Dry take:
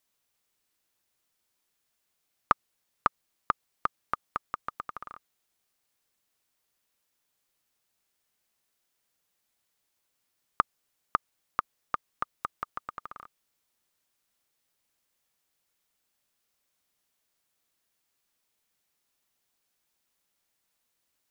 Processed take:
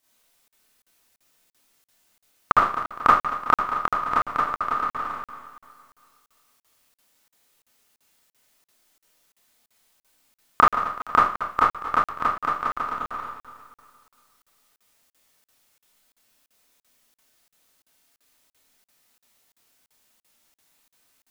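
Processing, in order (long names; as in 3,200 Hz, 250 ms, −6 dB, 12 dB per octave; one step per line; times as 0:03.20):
feedback delay that plays each chunk backwards 116 ms, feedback 69%, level −11.5 dB
four-comb reverb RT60 0.42 s, combs from 25 ms, DRR −8.5 dB
regular buffer underruns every 0.34 s, samples 2,048, zero, from 0:00.48
level +3.5 dB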